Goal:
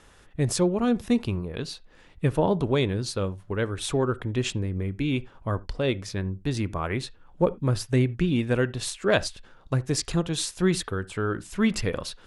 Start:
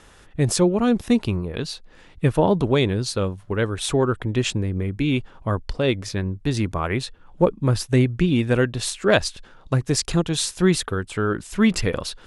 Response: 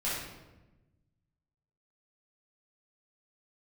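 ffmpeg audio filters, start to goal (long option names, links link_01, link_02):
-filter_complex "[0:a]asplit=2[link_01][link_02];[1:a]atrim=start_sample=2205,afade=type=out:start_time=0.14:duration=0.01,atrim=end_sample=6615,lowpass=2600[link_03];[link_02][link_03]afir=irnorm=-1:irlink=0,volume=-21.5dB[link_04];[link_01][link_04]amix=inputs=2:normalize=0,volume=-5dB"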